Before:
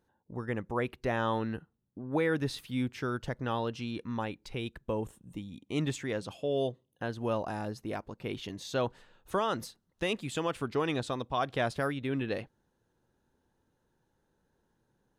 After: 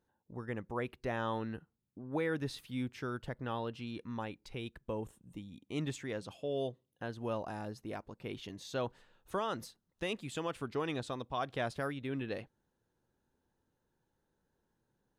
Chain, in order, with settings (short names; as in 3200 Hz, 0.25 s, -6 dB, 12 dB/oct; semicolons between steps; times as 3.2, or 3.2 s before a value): 3.2–3.87 bell 6000 Hz -8 dB 0.49 oct; gain -5.5 dB